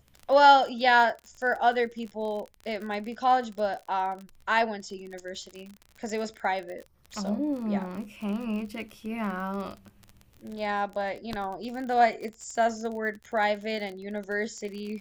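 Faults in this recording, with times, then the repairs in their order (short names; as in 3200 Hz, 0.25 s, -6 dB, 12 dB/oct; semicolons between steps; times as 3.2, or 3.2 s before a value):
crackle 36/s -35 dBFS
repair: de-click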